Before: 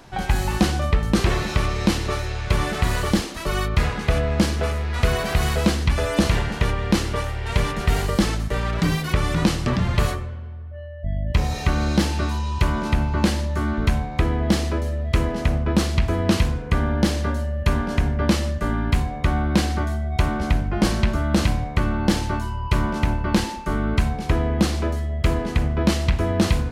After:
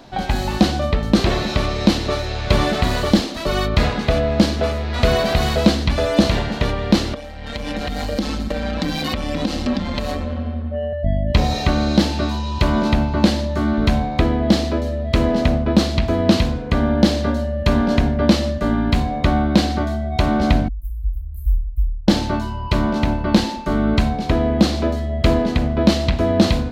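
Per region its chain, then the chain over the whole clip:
7.14–10.93 comb 3.8 ms, depth 98% + compressor 12:1, threshold -30 dBFS + AM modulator 150 Hz, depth 35%
20.68–22.08 inverse Chebyshev band-stop 160–5900 Hz, stop band 60 dB + doubler 17 ms -11 dB
whole clip: fifteen-band EQ 250 Hz +9 dB, 630 Hz +8 dB, 4000 Hz +8 dB, 10000 Hz -6 dB; AGC; gain -1 dB

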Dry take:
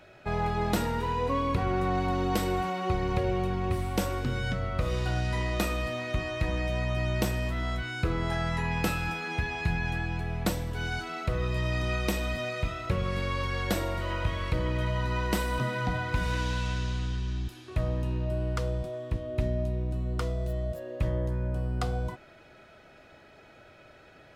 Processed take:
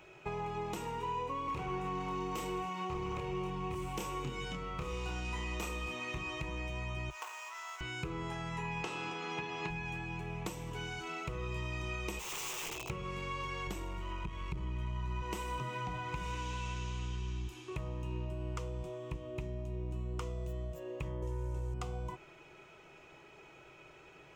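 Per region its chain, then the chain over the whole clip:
1.45–6.4 doubler 28 ms -2 dB + hard clip -21.5 dBFS
7.1–7.81 median filter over 15 samples + HPF 890 Hz 24 dB/oct + notch 2100 Hz, Q 29
8.82–9.69 spectral limiter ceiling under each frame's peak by 13 dB + BPF 130–4800 Hz + bell 2300 Hz -6.5 dB 0.2 oct
12.19–12.9 Chebyshev band-stop 850–2500 Hz, order 4 + wrapped overs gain 33.5 dB
13.67–15.22 low shelf 130 Hz +12 dB + notch 510 Hz, Q 5.1 + core saturation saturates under 120 Hz
21.22–21.74 CVSD 64 kbps + comb 2.2 ms, depth 95%
whole clip: low shelf 180 Hz -5.5 dB; compressor, threshold -35 dBFS; ripple EQ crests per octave 0.72, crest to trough 10 dB; gain -2.5 dB

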